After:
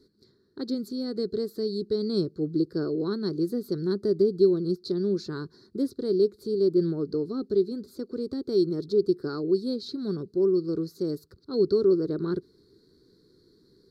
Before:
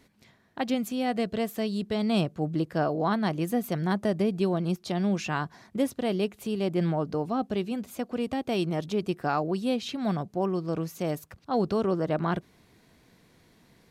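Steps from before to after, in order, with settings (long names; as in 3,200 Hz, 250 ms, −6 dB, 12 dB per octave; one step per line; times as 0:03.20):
drawn EQ curve 230 Hz 0 dB, 400 Hz +14 dB, 710 Hz −21 dB, 1,400 Hz −3 dB, 2,800 Hz −30 dB, 4,300 Hz +11 dB, 6,200 Hz −7 dB
level −4 dB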